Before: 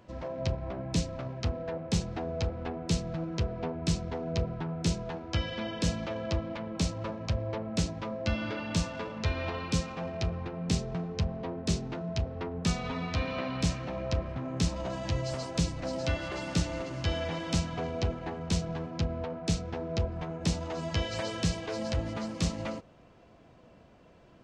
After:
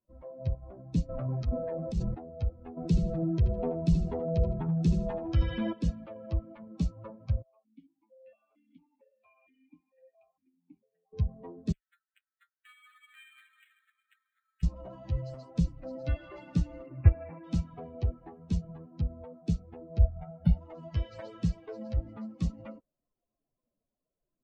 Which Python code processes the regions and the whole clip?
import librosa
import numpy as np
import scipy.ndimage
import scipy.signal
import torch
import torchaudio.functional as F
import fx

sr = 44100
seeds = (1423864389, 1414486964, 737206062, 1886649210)

y = fx.chain(x, sr, fx.transient(attack_db=-8, sustain_db=5),
    fx.env_flatten(amount_pct=70), at=(1.09, 2.15))
y = fx.chain(y, sr, fx.echo_feedback(ms=79, feedback_pct=39, wet_db=-7),
    fx.env_flatten(amount_pct=50), at=(2.77, 5.73))
y = fx.chain(y, sr, fx.peak_eq(hz=420.0, db=-4.5, octaves=2.3),
    fx.vowel_held(hz=4.4), at=(7.42, 11.13))
y = fx.chain(y, sr, fx.steep_highpass(hz=1400.0, slope=48),
    fx.resample_bad(factor=8, down='filtered', up='hold'),
    fx.doppler_dist(depth_ms=0.47), at=(11.72, 14.63))
y = fx.chain(y, sr, fx.brickwall_lowpass(high_hz=2800.0),
    fx.transient(attack_db=7, sustain_db=-2), at=(16.86, 17.44))
y = fx.chain(y, sr, fx.self_delay(depth_ms=0.14),
    fx.moving_average(points=6),
    fx.comb(ms=1.4, depth=0.65), at=(20.0, 20.58))
y = fx.bin_expand(y, sr, power=2.0)
y = fx.tilt_eq(y, sr, slope=-3.5)
y = y * librosa.db_to_amplitude(-4.0)